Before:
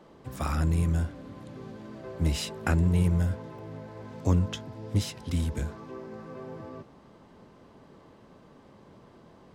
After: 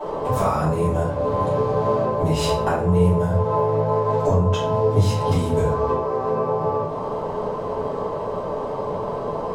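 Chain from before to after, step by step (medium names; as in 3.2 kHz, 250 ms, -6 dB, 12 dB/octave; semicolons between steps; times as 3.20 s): high-order bell 690 Hz +14 dB; compression 6:1, threshold -36 dBFS, peak gain reduction 20.5 dB; simulated room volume 86 m³, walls mixed, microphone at 2.8 m; trim +5.5 dB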